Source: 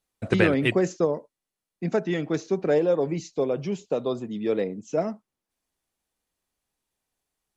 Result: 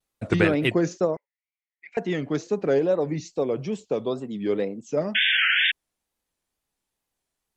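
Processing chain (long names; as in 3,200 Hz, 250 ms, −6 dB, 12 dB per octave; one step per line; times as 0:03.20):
0:01.17–0:01.97: four-pole ladder band-pass 2,200 Hz, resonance 85%
0:05.14–0:05.72: sound drawn into the spectrogram noise 1,400–3,400 Hz −21 dBFS
tape wow and flutter 140 cents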